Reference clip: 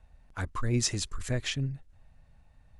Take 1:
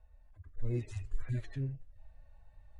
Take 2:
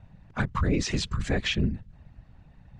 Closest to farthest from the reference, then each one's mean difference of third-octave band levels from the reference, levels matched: 2, 1; 5.5, 8.5 dB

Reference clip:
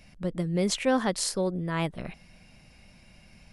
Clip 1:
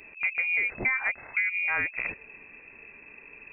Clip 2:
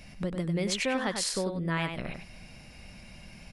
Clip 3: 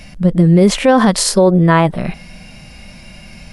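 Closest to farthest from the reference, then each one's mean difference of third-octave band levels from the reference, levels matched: 3, 2, 1; 2.0, 6.5, 13.0 dB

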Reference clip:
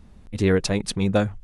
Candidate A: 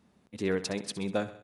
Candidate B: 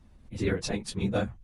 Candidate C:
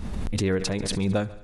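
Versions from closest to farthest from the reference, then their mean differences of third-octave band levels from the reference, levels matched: B, A, C; 3.0, 4.0, 7.5 dB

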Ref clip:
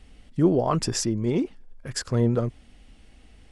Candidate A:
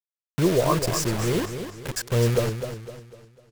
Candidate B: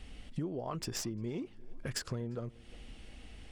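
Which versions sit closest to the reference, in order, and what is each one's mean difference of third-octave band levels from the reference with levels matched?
B, A; 5.0, 12.5 dB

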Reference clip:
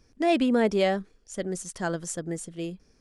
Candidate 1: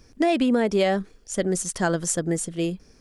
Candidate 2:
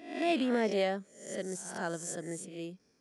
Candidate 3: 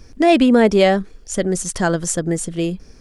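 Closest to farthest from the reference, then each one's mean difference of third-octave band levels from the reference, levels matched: 3, 1, 2; 1.5, 3.0, 5.0 dB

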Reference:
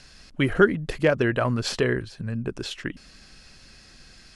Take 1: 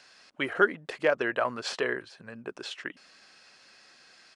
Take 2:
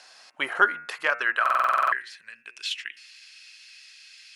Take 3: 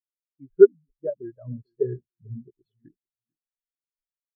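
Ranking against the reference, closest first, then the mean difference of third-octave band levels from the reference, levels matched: 1, 2, 3; 4.5, 10.0, 17.0 dB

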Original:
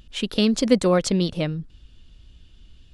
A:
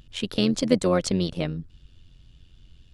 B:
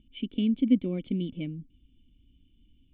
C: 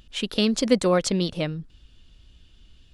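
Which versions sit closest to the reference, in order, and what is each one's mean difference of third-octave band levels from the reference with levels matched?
C, A, B; 1.0, 2.5, 10.0 dB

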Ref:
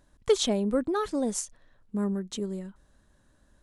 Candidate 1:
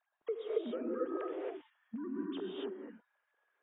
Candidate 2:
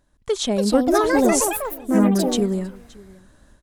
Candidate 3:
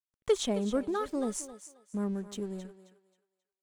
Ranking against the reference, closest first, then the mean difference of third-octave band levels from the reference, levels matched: 3, 2, 1; 3.5, 8.5, 12.0 dB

